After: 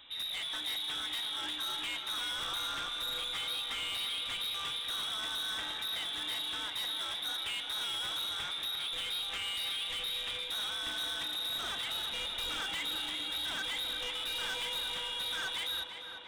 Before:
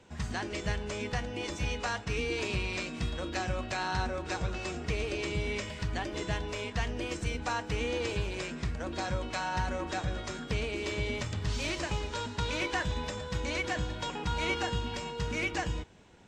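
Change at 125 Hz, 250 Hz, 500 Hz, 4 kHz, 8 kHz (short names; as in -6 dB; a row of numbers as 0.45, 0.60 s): -24.5, -16.5, -15.0, +9.0, -0.5 dB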